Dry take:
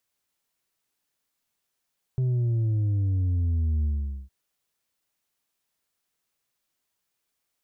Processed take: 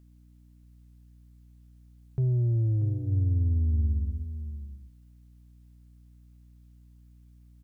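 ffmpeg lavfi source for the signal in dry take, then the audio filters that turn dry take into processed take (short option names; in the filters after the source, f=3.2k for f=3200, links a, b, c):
-f lavfi -i "aevalsrc='0.0794*clip((2.11-t)/0.45,0,1)*tanh(1.58*sin(2*PI*130*2.11/log(65/130)*(exp(log(65/130)*t/2.11)-1)))/tanh(1.58)':d=2.11:s=44100"
-af "bandreject=f=50:t=h:w=6,bandreject=f=100:t=h:w=6,aeval=exprs='val(0)+0.002*(sin(2*PI*60*n/s)+sin(2*PI*2*60*n/s)/2+sin(2*PI*3*60*n/s)/3+sin(2*PI*4*60*n/s)/4+sin(2*PI*5*60*n/s)/5)':c=same,aecho=1:1:635:0.282"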